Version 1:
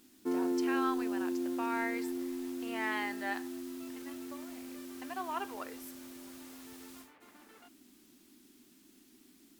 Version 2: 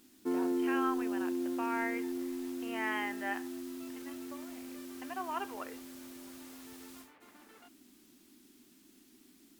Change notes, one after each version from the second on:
speech: add brick-wall FIR low-pass 3300 Hz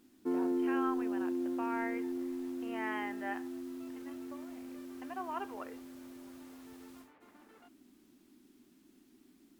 master: add high shelf 2000 Hz -9.5 dB

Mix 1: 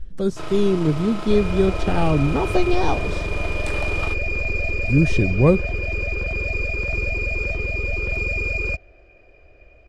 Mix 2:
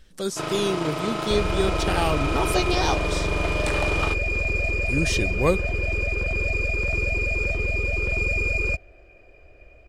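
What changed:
speech: add tilt +4 dB/oct; first sound +4.5 dB; second sound: remove LPF 6800 Hz 24 dB/oct

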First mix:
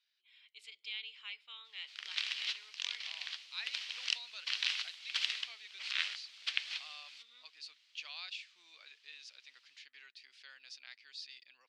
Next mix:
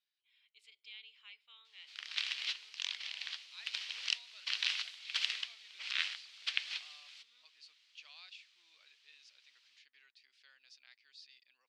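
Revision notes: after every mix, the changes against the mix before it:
speech -9.0 dB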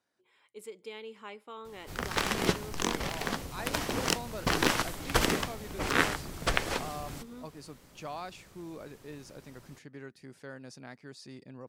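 master: remove Butterworth band-pass 3400 Hz, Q 1.5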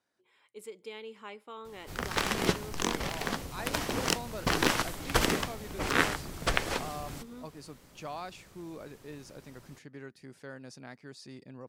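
none

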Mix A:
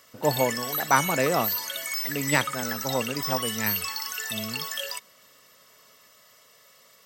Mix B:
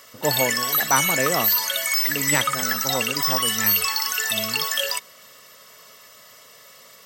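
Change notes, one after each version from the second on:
background +8.5 dB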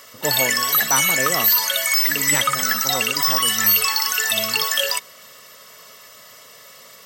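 speech: send off; background +3.5 dB

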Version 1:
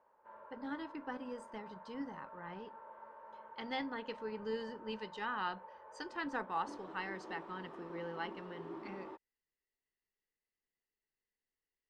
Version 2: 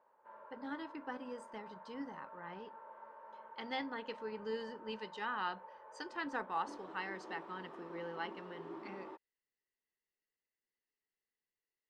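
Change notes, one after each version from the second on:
master: add low shelf 120 Hz -11 dB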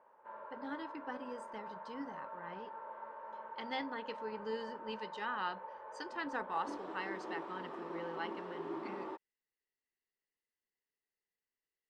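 background +6.0 dB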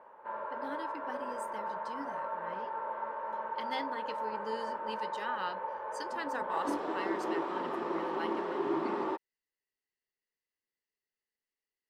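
speech: remove air absorption 110 m; background +10.0 dB

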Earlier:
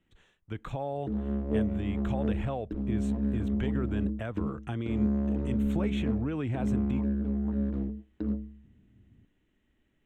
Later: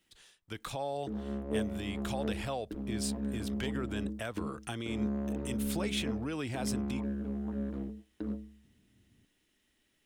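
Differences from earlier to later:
speech: remove running mean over 9 samples; master: add low shelf 260 Hz -10 dB

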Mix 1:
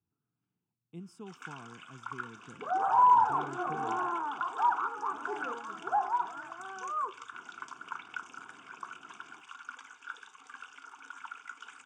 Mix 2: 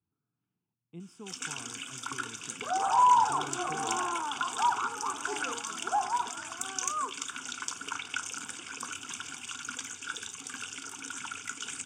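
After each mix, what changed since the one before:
first sound: remove band-pass 1100 Hz, Q 2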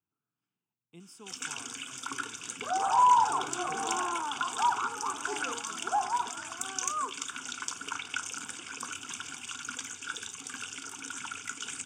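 speech: add tilt +3 dB/oct

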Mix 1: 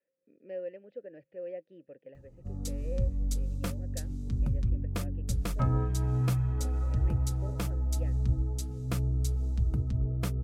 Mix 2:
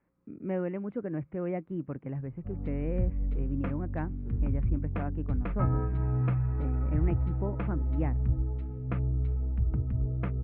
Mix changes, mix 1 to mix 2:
speech: remove vowel filter e; master: add steep low-pass 2400 Hz 36 dB/oct

